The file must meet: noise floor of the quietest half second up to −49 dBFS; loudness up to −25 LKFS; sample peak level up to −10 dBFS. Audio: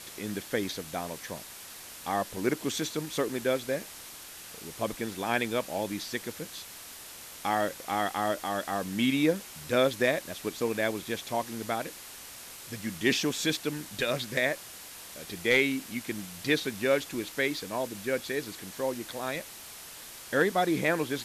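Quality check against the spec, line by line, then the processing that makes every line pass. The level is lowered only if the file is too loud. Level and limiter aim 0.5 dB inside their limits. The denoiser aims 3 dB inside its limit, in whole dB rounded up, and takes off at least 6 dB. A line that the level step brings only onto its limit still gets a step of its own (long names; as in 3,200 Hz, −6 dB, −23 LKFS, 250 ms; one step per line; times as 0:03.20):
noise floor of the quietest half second −46 dBFS: out of spec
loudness −30.5 LKFS: in spec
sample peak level −13.0 dBFS: in spec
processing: broadband denoise 6 dB, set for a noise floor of −46 dBFS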